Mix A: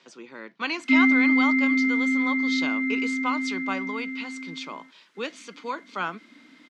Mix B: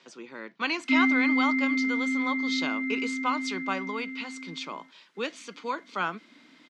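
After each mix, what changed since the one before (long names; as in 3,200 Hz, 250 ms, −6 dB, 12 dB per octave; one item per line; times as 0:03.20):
background −4.5 dB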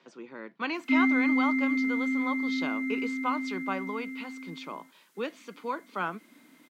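background: remove low-pass filter 2,400 Hz 12 dB per octave
master: add high-shelf EQ 2,500 Hz −12 dB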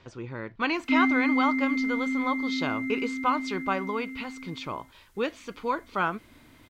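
speech +5.0 dB
master: remove Butterworth high-pass 160 Hz 72 dB per octave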